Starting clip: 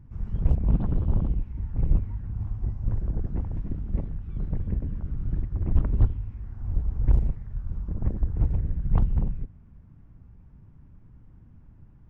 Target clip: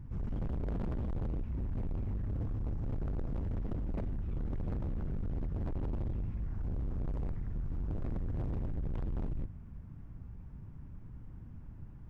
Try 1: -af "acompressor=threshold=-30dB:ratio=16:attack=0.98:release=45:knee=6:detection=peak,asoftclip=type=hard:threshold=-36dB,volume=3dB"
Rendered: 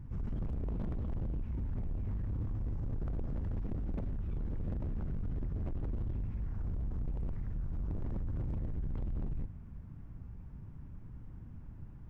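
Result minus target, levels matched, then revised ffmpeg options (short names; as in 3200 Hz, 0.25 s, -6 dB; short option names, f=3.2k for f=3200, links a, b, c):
compressor: peak gain reduction +7.5 dB
-af "acompressor=threshold=-22dB:ratio=16:attack=0.98:release=45:knee=6:detection=peak,asoftclip=type=hard:threshold=-36dB,volume=3dB"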